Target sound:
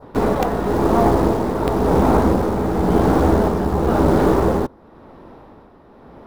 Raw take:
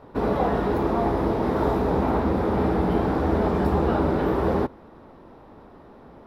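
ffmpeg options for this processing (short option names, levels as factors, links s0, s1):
-filter_complex "[0:a]adynamicequalizer=threshold=0.00316:dfrequency=2600:dqfactor=1.3:tfrequency=2600:tqfactor=1.3:attack=5:release=100:ratio=0.375:range=3:mode=cutabove:tftype=bell,asplit=2[s0][s1];[s1]acrusher=bits=3:dc=4:mix=0:aa=0.000001,volume=0.562[s2];[s0][s2]amix=inputs=2:normalize=0,tremolo=f=0.95:d=0.52,volume=2"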